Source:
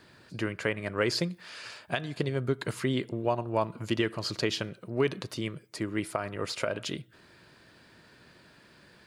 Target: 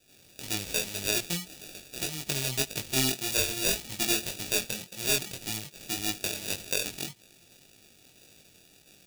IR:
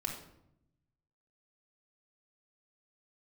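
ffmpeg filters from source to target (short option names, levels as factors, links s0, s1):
-filter_complex "[0:a]asoftclip=type=tanh:threshold=0.112,asettb=1/sr,asplit=3[s0][s1][s2];[s0]atrim=end=2.854[s3];[s1]atrim=start=2.85:end=4.98,asetpts=PTS-STARTPTS,afade=t=in:d=0.004:c=qsin,afade=t=out:st=2.126:d=0.004:c=qsin,asplit=2[s4][s5];[s5]adelay=23,volume=0.531[s6];[s4][s6]amix=inputs=2:normalize=0,atrim=end_sample=93933[s7];[s2]atrim=start=4.976[s8];[s3][s7]acrossfade=d=0.004:c1=hsin:c2=qsin[s9];[s9][s8]acrossfade=d=0.004:c1=qsin:c2=hsin,acrossover=split=1900|5800[s10][s11][s12];[s12]adelay=60[s13];[s10]adelay=90[s14];[s14][s11][s13]amix=inputs=3:normalize=0,acrossover=split=3100[s15][s16];[s16]acompressor=threshold=0.00501:ratio=4:attack=1:release=60[s17];[s15][s17]amix=inputs=2:normalize=0,acrusher=samples=42:mix=1:aa=0.000001,aexciter=amount=6.1:drive=5.6:freq=2100,aeval=exprs='3.35*(cos(1*acos(clip(val(0)/3.35,-1,1)))-cos(1*PI/2))+1.68*(cos(2*acos(clip(val(0)/3.35,-1,1)))-cos(2*PI/2))':c=same,flanger=delay=19:depth=4.6:speed=1.8,volume=0.75"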